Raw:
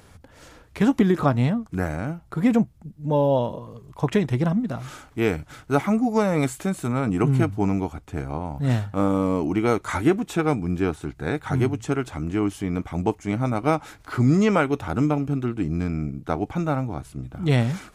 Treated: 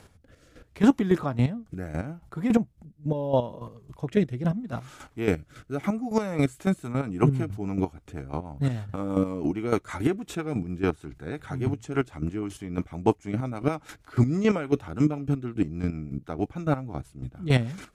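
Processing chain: chopper 3.6 Hz, depth 65%, duty 25%; rotary speaker horn 0.75 Hz, later 6.3 Hz, at 6.13; gain +2 dB

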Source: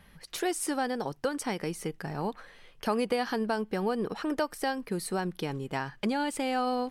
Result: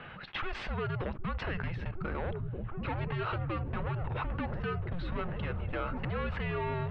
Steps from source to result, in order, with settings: soft clip -32.5 dBFS, distortion -8 dB; gate -42 dBFS, range -20 dB; mistuned SSB -350 Hz 220–3500 Hz; dynamic EQ 1400 Hz, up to +4 dB, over -52 dBFS, Q 0.79; repeats that get brighter 0.763 s, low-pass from 200 Hz, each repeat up 1 oct, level -6 dB; fast leveller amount 70%

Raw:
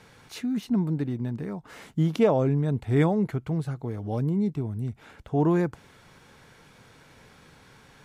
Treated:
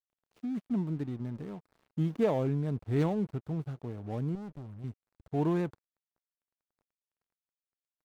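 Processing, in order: median filter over 25 samples; 4.35–4.84 tube stage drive 32 dB, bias 0.55; crossover distortion -47 dBFS; gain -6 dB

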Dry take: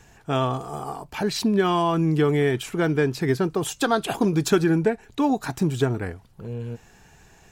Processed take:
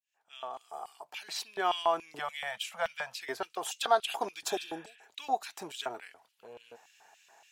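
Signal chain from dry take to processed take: opening faded in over 1.49 s; 4.53–5.01 spectral repair 860–3700 Hz both; LFO high-pass square 3.5 Hz 720–2800 Hz; 2.19–3.19 elliptic band-stop 210–540 Hz; gain -7.5 dB

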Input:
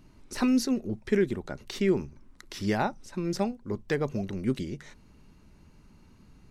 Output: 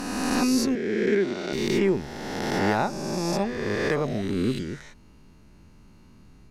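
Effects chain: spectral swells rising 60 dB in 2.10 s; 0.75–1.53 three-band isolator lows -21 dB, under 170 Hz, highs -15 dB, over 7500 Hz

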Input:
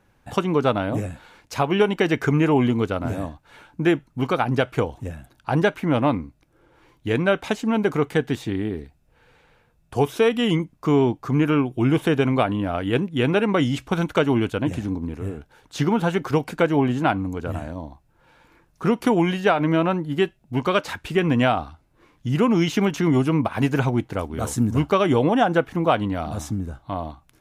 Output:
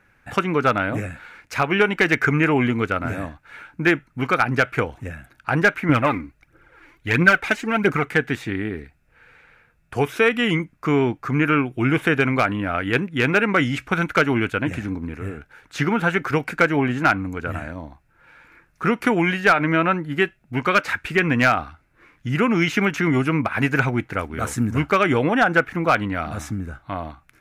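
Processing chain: band shelf 1800 Hz +10.5 dB 1.2 oct; hard clip -6.5 dBFS, distortion -22 dB; 5.89–8.04 phaser 1.5 Hz, delay 3.6 ms, feedback 56%; gain -1 dB

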